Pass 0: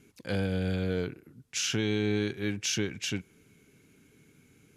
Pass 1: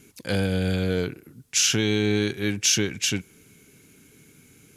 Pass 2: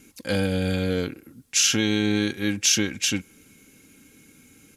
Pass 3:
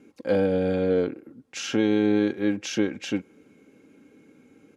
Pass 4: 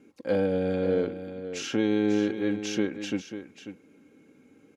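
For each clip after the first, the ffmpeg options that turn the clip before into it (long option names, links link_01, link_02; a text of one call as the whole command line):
ffmpeg -i in.wav -af "highshelf=frequency=4900:gain=9.5,volume=5.5dB" out.wav
ffmpeg -i in.wav -af "aecho=1:1:3.7:0.48" out.wav
ffmpeg -i in.wav -af "bandpass=frequency=490:width_type=q:width=0.99:csg=0,volume=5.5dB" out.wav
ffmpeg -i in.wav -af "aecho=1:1:542:0.282,volume=-3dB" out.wav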